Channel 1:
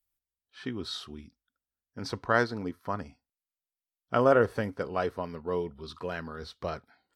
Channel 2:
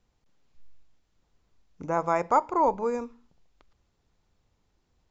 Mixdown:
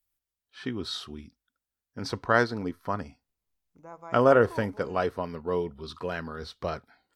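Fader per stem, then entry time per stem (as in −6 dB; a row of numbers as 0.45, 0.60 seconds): +2.5, −18.5 decibels; 0.00, 1.95 seconds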